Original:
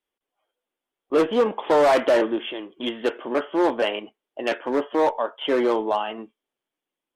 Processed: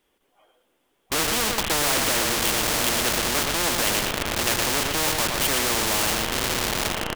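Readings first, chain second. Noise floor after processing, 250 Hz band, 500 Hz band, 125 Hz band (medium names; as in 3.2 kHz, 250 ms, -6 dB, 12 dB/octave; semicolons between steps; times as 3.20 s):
-70 dBFS, -4.5 dB, -8.0 dB, no reading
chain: echo that smears into a reverb 948 ms, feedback 41%, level -12 dB; in parallel at -4.5 dB: Schmitt trigger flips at -30 dBFS; on the sum: bass shelf 330 Hz +7 dB; delay 116 ms -8 dB; spectrum-flattening compressor 4:1; trim -2 dB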